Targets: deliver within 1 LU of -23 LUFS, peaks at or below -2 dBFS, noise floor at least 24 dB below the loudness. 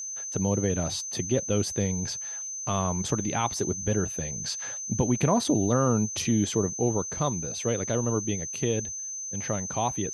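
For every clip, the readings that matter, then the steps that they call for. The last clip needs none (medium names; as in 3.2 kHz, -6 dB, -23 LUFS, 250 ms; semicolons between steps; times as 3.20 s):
steady tone 6.2 kHz; tone level -33 dBFS; loudness -27.5 LUFS; peak level -11.0 dBFS; loudness target -23.0 LUFS
-> band-stop 6.2 kHz, Q 30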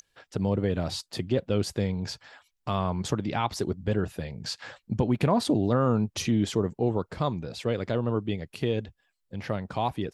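steady tone not found; loudness -28.5 LUFS; peak level -11.5 dBFS; loudness target -23.0 LUFS
-> trim +5.5 dB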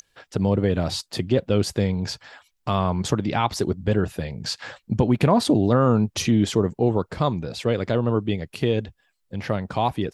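loudness -23.0 LUFS; peak level -6.0 dBFS; noise floor -71 dBFS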